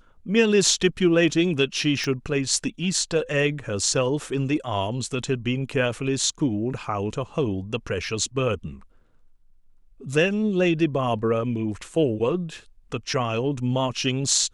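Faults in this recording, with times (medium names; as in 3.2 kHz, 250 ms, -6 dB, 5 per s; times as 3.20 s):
2.04 s: pop -15 dBFS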